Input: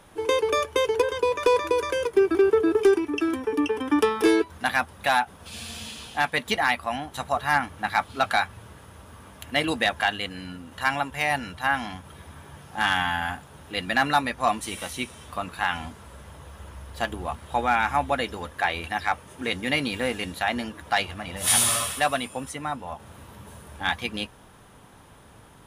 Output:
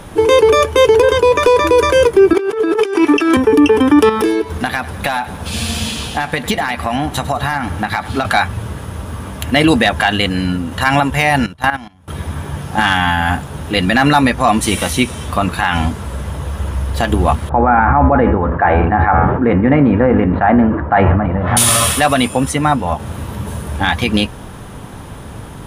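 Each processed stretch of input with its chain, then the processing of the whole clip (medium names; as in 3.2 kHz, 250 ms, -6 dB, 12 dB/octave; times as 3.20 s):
2.33–3.37 s: frequency weighting A + compressor with a negative ratio -33 dBFS
4.09–8.25 s: compression 8:1, threshold -30 dBFS + feedback delay 102 ms, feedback 58%, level -16 dB
11.46–12.08 s: gate -34 dBFS, range -7 dB + transient shaper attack +10 dB, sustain -11 dB + level held to a coarse grid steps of 17 dB
17.49–21.57 s: low-pass 1.5 kHz 24 dB/octave + de-hum 83.77 Hz, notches 37 + decay stretcher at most 54 dB/s
whole clip: bass shelf 380 Hz +8 dB; loudness maximiser +16 dB; trim -1 dB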